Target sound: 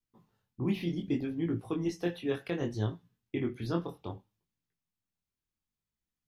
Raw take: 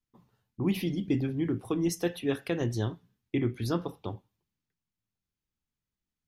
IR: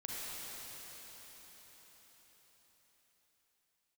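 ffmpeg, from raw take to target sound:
-filter_complex "[0:a]acrossover=split=4900[s0][s1];[s1]acompressor=threshold=0.00141:ratio=4:attack=1:release=60[s2];[s0][s2]amix=inputs=2:normalize=0,flanger=delay=17.5:depth=6.5:speed=0.65"

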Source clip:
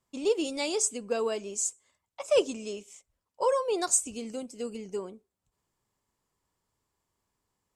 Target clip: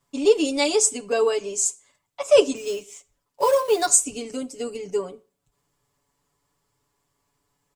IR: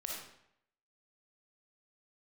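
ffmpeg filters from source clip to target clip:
-filter_complex "[0:a]asplit=3[s0][s1][s2];[s0]afade=t=out:st=2.55:d=0.02[s3];[s1]acrusher=bits=5:mode=log:mix=0:aa=0.000001,afade=t=in:st=2.55:d=0.02,afade=t=out:st=3.88:d=0.02[s4];[s2]afade=t=in:st=3.88:d=0.02[s5];[s3][s4][s5]amix=inputs=3:normalize=0,aecho=1:1:7:0.99,asplit=2[s6][s7];[1:a]atrim=start_sample=2205,asetrate=74970,aresample=44100[s8];[s7][s8]afir=irnorm=-1:irlink=0,volume=0.237[s9];[s6][s9]amix=inputs=2:normalize=0,volume=1.58"

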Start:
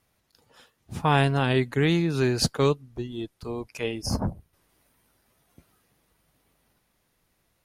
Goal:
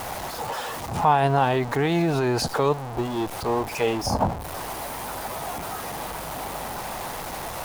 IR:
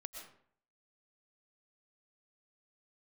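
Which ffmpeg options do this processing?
-af "aeval=exprs='val(0)+0.5*0.0282*sgn(val(0))':c=same,alimiter=limit=0.126:level=0:latency=1:release=33,equalizer=f=810:w=1.1:g=14.5"

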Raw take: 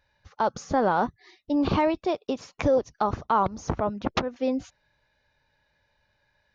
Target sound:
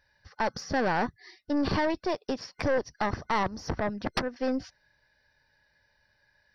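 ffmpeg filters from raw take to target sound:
-af "aeval=exprs='(tanh(12.6*val(0)+0.45)-tanh(0.45))/12.6':c=same,superequalizer=11b=2:14b=2.51:15b=0.316"

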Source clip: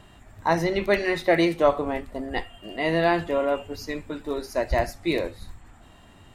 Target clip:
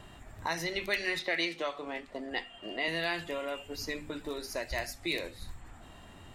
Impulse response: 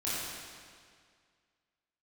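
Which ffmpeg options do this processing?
-filter_complex "[0:a]bandreject=f=50:t=h:w=6,bandreject=f=100:t=h:w=6,bandreject=f=150:t=h:w=6,bandreject=f=200:t=h:w=6,bandreject=f=250:t=h:w=6,bandreject=f=300:t=h:w=6,acrossover=split=1900[s0][s1];[s0]acompressor=threshold=0.0158:ratio=5[s2];[s2][s1]amix=inputs=2:normalize=0,asettb=1/sr,asplit=3[s3][s4][s5];[s3]atrim=end=1.194[s6];[s4]atrim=start=1.19:end=2.88,asetpts=PTS-STARTPTS,afade=t=in:d=0.004:c=qsin,afade=t=out:st=1.686:d=0.004:c=qsin,acrossover=split=180 7000:gain=0.224 1 0.158[s7][s8][s9];[s7][s8][s9]amix=inputs=3:normalize=0[s10];[s5]atrim=start=2.876[s11];[s6][s10]acrossfade=d=0.004:c1=hsin:c2=qsin[s12];[s12][s11]acrossfade=d=0.004:c1=qsin:c2=hsin"

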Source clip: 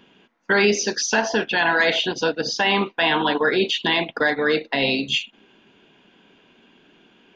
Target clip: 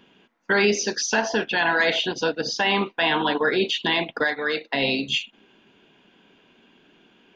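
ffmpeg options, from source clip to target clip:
-filter_complex "[0:a]asettb=1/sr,asplit=3[s0][s1][s2];[s0]atrim=end=4.244[s3];[s1]atrim=start=4.24:end=4.72,asetpts=PTS-STARTPTS,afade=t=in:d=0.004:c=qsin,afade=t=out:st=0.476:d=0.004:c=qsin,lowshelf=f=450:g=-10[s4];[s2]atrim=start=4.716[s5];[s3][s4]acrossfade=d=0.004:c1=hsin:c2=qsin[s6];[s6][s5]acrossfade=d=0.004:c1=qsin:c2=hsin,volume=0.794"

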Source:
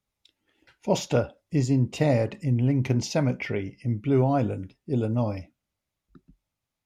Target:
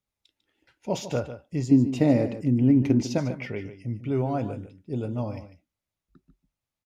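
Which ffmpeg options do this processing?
-filter_complex "[0:a]asettb=1/sr,asplit=3[s0][s1][s2];[s0]atrim=end=1.714[s3];[s1]atrim=start=1.71:end=3.18,asetpts=PTS-STARTPTS,afade=t=in:d=0.004:c=qsin,afade=t=out:st=1.466:d=0.004:c=qsin,equalizer=f=280:w=1.3:g=12[s4];[s2]atrim=start=3.176[s5];[s3][s4]acrossfade=d=0.004:c1=hsin:c2=qsin[s6];[s6][s5]acrossfade=d=0.004:c1=qsin:c2=hsin,aecho=1:1:148:0.251,volume=0.596"

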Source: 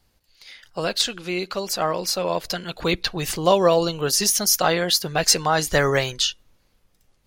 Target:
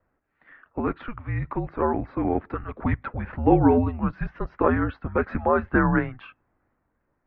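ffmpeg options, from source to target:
-filter_complex "[0:a]highpass=f=160:t=q:w=0.5412,highpass=f=160:t=q:w=1.307,lowpass=f=2000:t=q:w=0.5176,lowpass=f=2000:t=q:w=0.7071,lowpass=f=2000:t=q:w=1.932,afreqshift=-240,asettb=1/sr,asplit=3[s0][s1][s2];[s0]atrim=end=3.174[s3];[s1]atrim=start=3.17:end=3.78,asetpts=PTS-STARTPTS,afade=t=in:d=0.004:c=qsin,afade=t=out:st=0.606:d=0.004:c=qsin,bandreject=f=63.37:t=h:w=4,bandreject=f=126.74:t=h:w=4,bandreject=f=190.11:t=h:w=4,bandreject=f=253.48:t=h:w=4,bandreject=f=316.85:t=h:w=4,bandreject=f=380.22:t=h:w=4,bandreject=f=443.59:t=h:w=4,bandreject=f=506.96:t=h:w=4,bandreject=f=570.33:t=h:w=4,bandreject=f=633.7:t=h:w=4,bandreject=f=697.07:t=h:w=4,bandreject=f=760.44:t=h:w=4,bandreject=f=823.81:t=h:w=4,bandreject=f=887.18:t=h:w=4,bandreject=f=950.55:t=h:w=4,bandreject=f=1013.92:t=h:w=4,bandreject=f=1077.29:t=h:w=4,bandreject=f=1140.66:t=h:w=4,bandreject=f=1204.03:t=h:w=4,bandreject=f=1267.4:t=h:w=4,bandreject=f=1330.77:t=h:w=4,bandreject=f=1394.14:t=h:w=4,bandreject=f=1457.51:t=h:w=4,bandreject=f=1520.88:t=h:w=4[s4];[s2]atrim=start=3.776[s5];[s3][s4]acrossfade=d=0.004:c1=hsin:c2=qsin[s6];[s6][s5]acrossfade=d=0.004:c1=qsin:c2=hsin"

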